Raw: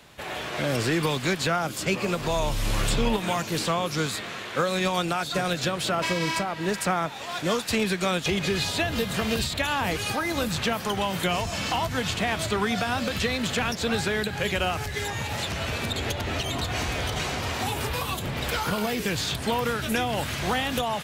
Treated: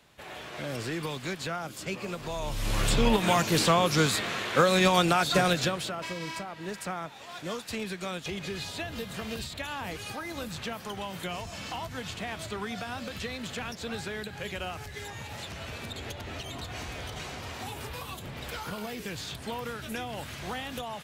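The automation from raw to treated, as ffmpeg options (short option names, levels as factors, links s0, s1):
-af "volume=1.41,afade=t=in:st=2.39:d=0.98:silence=0.251189,afade=t=out:st=5.4:d=0.53:silence=0.223872"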